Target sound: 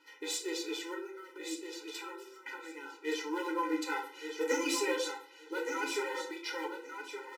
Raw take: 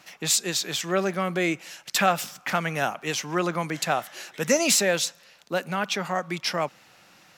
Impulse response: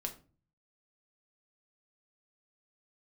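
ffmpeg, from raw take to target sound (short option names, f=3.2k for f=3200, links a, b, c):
-filter_complex "[0:a]highshelf=f=3.7k:g=-11.5,asplit=3[a][b][c];[a]afade=t=out:st=0.93:d=0.02[d];[b]acompressor=threshold=-35dB:ratio=8,afade=t=in:st=0.93:d=0.02,afade=t=out:st=3.04:d=0.02[e];[c]afade=t=in:st=3.04:d=0.02[f];[d][e][f]amix=inputs=3:normalize=0,aeval=exprs='clip(val(0),-1,0.075)':c=same,flanger=delay=7.5:depth=2.4:regen=-23:speed=0.4:shape=sinusoidal,acrusher=bits=7:mode=log:mix=0:aa=0.000001,aecho=1:1:1171|2342|3513:0.422|0.0759|0.0137[g];[1:a]atrim=start_sample=2205,asetrate=32634,aresample=44100[h];[g][h]afir=irnorm=-1:irlink=0,afftfilt=real='re*eq(mod(floor(b*sr/1024/260),2),1)':imag='im*eq(mod(floor(b*sr/1024/260),2),1)':win_size=1024:overlap=0.75"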